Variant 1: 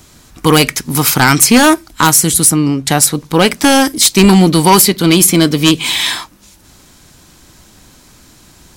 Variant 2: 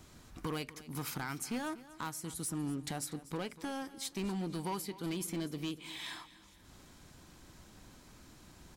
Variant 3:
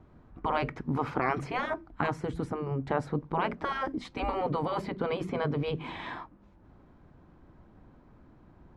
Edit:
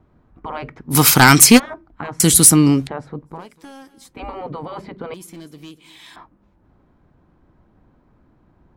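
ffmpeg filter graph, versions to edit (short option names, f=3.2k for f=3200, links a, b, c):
-filter_complex "[0:a]asplit=2[a][b];[1:a]asplit=2[c][d];[2:a]asplit=5[e][f][g][h][i];[e]atrim=end=0.94[j];[a]atrim=start=0.9:end=1.6[k];[f]atrim=start=1.56:end=2.202[l];[b]atrim=start=2.198:end=2.872[m];[g]atrim=start=2.868:end=3.49[n];[c]atrim=start=3.25:end=4.2[o];[h]atrim=start=3.96:end=5.142[p];[d]atrim=start=5.138:end=6.162[q];[i]atrim=start=6.158[r];[j][k]acrossfade=d=0.04:c1=tri:c2=tri[s];[s][l]acrossfade=d=0.04:c1=tri:c2=tri[t];[t][m]acrossfade=d=0.004:c1=hsin:c2=hsin[u];[u][n]acrossfade=d=0.004:c1=hsin:c2=hsin[v];[v][o]acrossfade=d=0.24:c1=tri:c2=tri[w];[w][p]acrossfade=d=0.24:c1=tri:c2=tri[x];[x][q]acrossfade=d=0.004:c1=hsin:c2=hsin[y];[y][r]acrossfade=d=0.004:c1=hsin:c2=hsin"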